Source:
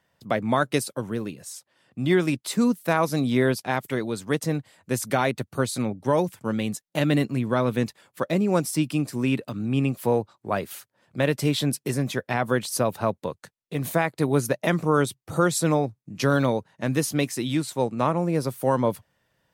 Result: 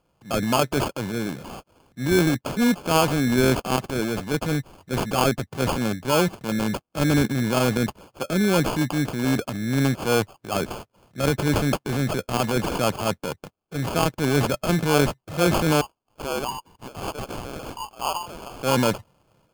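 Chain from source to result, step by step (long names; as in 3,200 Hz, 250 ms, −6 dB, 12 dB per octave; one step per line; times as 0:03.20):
0:15.81–0:18.60: Butterworth high-pass 860 Hz 96 dB per octave
transient designer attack −6 dB, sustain +6 dB
decimation without filtering 23×
level +2.5 dB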